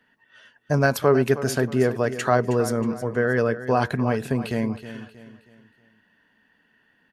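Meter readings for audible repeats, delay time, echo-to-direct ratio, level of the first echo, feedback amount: 3, 317 ms, −12.5 dB, −13.0 dB, 39%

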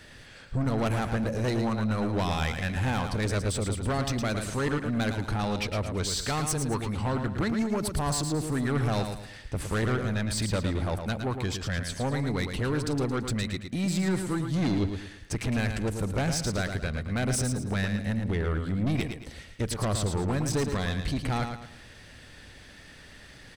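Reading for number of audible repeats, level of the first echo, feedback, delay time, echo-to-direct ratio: 4, −7.0 dB, 36%, 111 ms, −6.5 dB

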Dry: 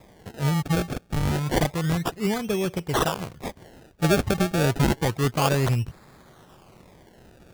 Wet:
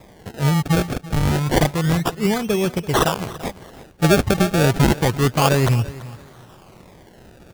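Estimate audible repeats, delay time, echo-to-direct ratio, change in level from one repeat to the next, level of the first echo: 2, 336 ms, −17.5 dB, −12.0 dB, −18.0 dB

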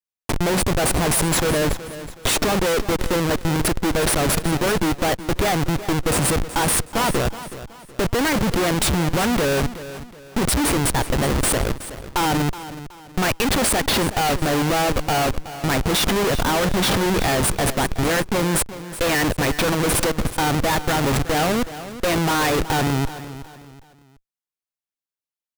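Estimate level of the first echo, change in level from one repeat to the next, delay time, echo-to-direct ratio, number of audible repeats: −14.0 dB, −9.0 dB, 372 ms, −13.5 dB, 3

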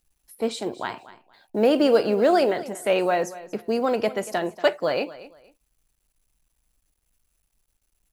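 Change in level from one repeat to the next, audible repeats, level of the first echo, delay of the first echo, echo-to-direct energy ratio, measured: −12.5 dB, 2, −17.0 dB, 235 ms, −17.0 dB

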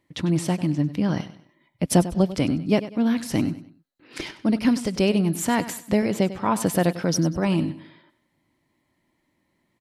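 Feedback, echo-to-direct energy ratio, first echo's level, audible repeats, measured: 34%, −14.0 dB, −14.5 dB, 3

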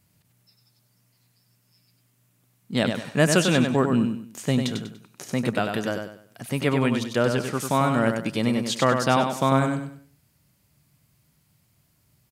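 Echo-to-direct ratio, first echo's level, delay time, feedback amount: −5.5 dB, −6.0 dB, 97 ms, 32%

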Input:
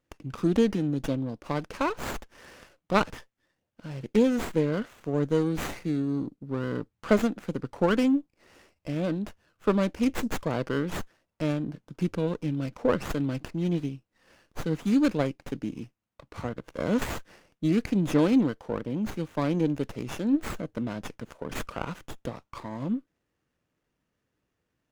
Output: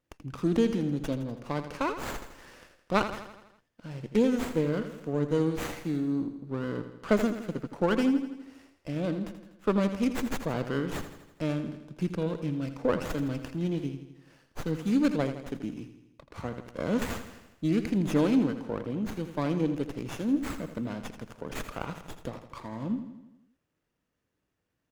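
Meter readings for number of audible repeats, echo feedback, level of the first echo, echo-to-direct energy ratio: 6, 57%, −10.5 dB, −9.0 dB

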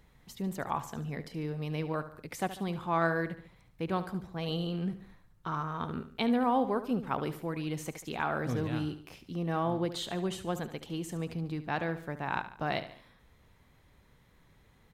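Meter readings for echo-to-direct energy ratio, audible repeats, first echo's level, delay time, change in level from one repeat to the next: −12.0 dB, 3, −13.0 dB, 72 ms, −6.0 dB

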